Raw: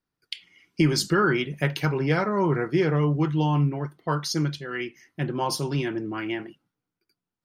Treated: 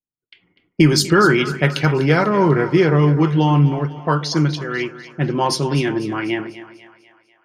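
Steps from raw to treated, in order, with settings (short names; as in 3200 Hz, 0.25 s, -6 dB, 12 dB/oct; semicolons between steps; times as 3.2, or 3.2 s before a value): gate with hold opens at -47 dBFS; low-pass opened by the level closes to 600 Hz, open at -21 dBFS; split-band echo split 520 Hz, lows 0.135 s, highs 0.247 s, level -14 dB; gain +8 dB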